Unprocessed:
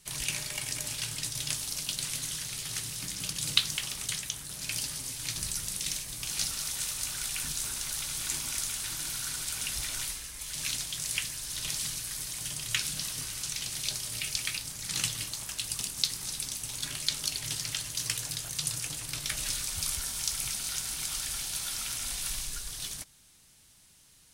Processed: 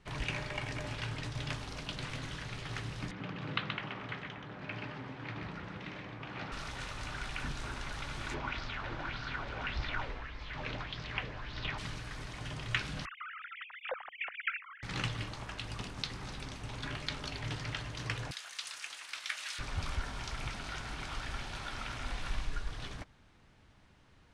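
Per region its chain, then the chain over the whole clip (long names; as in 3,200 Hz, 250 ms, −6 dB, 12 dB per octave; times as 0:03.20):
0:03.11–0:06.52: band-pass filter 140–2,300 Hz + single-tap delay 127 ms −5 dB
0:08.34–0:11.78: high-frequency loss of the air 180 metres + auto-filter bell 1.7 Hz 450–5,100 Hz +11 dB
0:13.05–0:14.83: three sine waves on the formant tracks + low-pass filter 2,700 Hz 24 dB per octave + spectral tilt −4 dB per octave
0:18.31–0:19.59: high-pass filter 1,500 Hz + high-shelf EQ 5,500 Hz +11 dB
whole clip: low-pass filter 1,600 Hz 12 dB per octave; parametric band 160 Hz −6 dB 0.31 octaves; level +6.5 dB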